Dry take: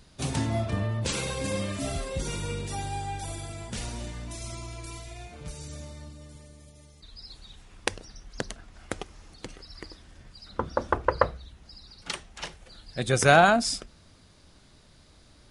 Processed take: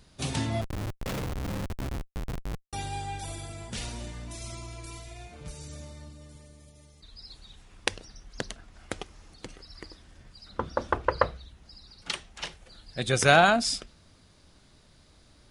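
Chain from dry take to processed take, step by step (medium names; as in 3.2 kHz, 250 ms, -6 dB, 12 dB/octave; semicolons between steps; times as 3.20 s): dynamic bell 3.3 kHz, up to +5 dB, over -45 dBFS, Q 0.89; 0.61–2.73 s: Schmitt trigger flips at -24 dBFS; trim -2 dB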